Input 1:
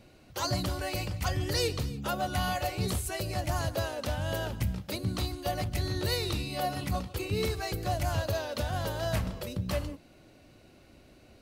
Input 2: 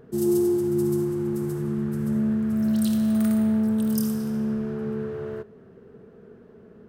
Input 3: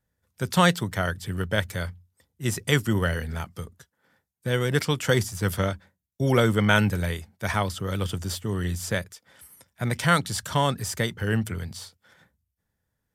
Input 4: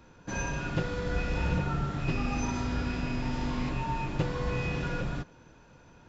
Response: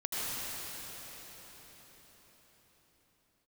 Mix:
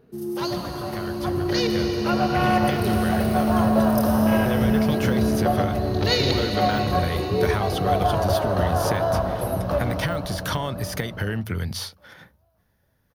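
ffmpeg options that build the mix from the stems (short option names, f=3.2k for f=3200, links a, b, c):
-filter_complex "[0:a]lowshelf=f=250:g=-10.5,afwtdn=0.0141,volume=0.5dB,asplit=3[a][b][c];[b]volume=-6.5dB[d];[c]volume=-21.5dB[e];[1:a]volume=-10.5dB,asplit=2[f][g];[g]volume=-3.5dB[h];[2:a]deesser=0.65,equalizer=f=7.9k:w=5.7:g=-5,acompressor=threshold=-31dB:ratio=6,volume=2.5dB[i];[f][i]amix=inputs=2:normalize=0,acompressor=threshold=-31dB:ratio=6,volume=0dB[j];[4:a]atrim=start_sample=2205[k];[d][h]amix=inputs=2:normalize=0[l];[l][k]afir=irnorm=-1:irlink=0[m];[e]aecho=0:1:1136|2272|3408|4544:1|0.27|0.0729|0.0197[n];[a][j][m][n]amix=inputs=4:normalize=0,equalizer=f=7.6k:w=4.5:g=-14.5,dynaudnorm=f=200:g=21:m=8.5dB"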